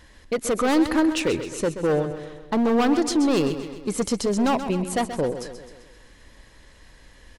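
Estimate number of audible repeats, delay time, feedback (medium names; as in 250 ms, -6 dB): 5, 130 ms, 54%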